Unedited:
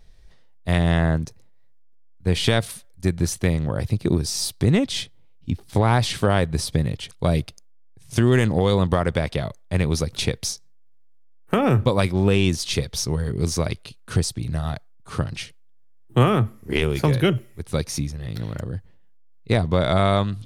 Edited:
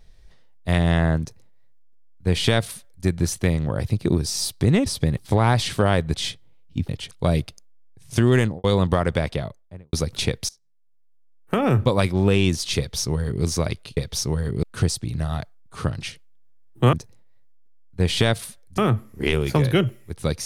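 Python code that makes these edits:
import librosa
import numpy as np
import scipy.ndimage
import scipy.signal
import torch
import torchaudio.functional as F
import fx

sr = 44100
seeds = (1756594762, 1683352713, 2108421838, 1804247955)

y = fx.studio_fade_out(x, sr, start_s=8.39, length_s=0.25)
y = fx.studio_fade_out(y, sr, start_s=9.21, length_s=0.72)
y = fx.edit(y, sr, fx.duplicate(start_s=1.2, length_s=1.85, to_s=16.27),
    fx.swap(start_s=4.86, length_s=0.75, other_s=6.58, other_length_s=0.31),
    fx.fade_in_from(start_s=10.49, length_s=1.34, floor_db=-23.5),
    fx.duplicate(start_s=12.78, length_s=0.66, to_s=13.97), tone=tone)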